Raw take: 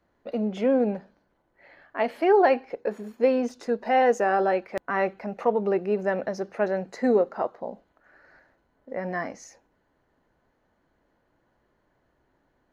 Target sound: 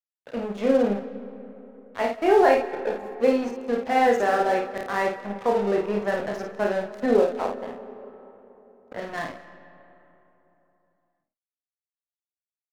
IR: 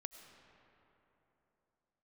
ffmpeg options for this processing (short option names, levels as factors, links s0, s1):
-filter_complex "[0:a]asplit=2[s0][s1];[s1]adelay=30,volume=0.708[s2];[s0][s2]amix=inputs=2:normalize=0,aeval=exprs='sgn(val(0))*max(abs(val(0))-0.0188,0)':c=same,asplit=2[s3][s4];[1:a]atrim=start_sample=2205,adelay=54[s5];[s4][s5]afir=irnorm=-1:irlink=0,volume=0.944[s6];[s3][s6]amix=inputs=2:normalize=0"